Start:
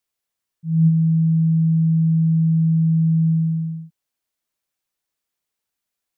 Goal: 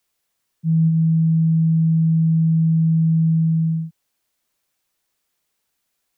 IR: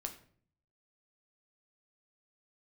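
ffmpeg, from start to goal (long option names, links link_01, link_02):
-filter_complex "[0:a]acrossover=split=120|260[link_01][link_02][link_03];[link_01]acompressor=threshold=-38dB:ratio=4[link_04];[link_02]acompressor=threshold=-28dB:ratio=4[link_05];[link_03]acompressor=threshold=-48dB:ratio=4[link_06];[link_04][link_05][link_06]amix=inputs=3:normalize=0,volume=8.5dB"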